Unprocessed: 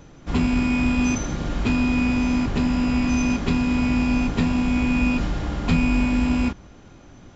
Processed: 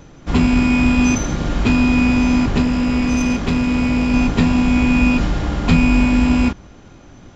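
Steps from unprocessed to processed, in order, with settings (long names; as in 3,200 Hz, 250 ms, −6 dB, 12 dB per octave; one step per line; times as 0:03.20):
in parallel at −10 dB: dead-zone distortion −39.5 dBFS
0:02.62–0:04.14: on the sum: tube saturation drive 14 dB, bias 0.35
level +4 dB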